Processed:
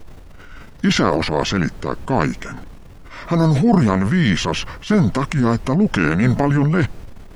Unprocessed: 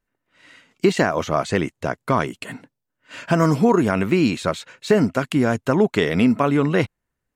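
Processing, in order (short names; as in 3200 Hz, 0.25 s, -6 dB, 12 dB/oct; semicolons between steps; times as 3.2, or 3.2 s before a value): added noise brown -41 dBFS; transient shaper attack -4 dB, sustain +8 dB; formant shift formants -5 st; gain +2.5 dB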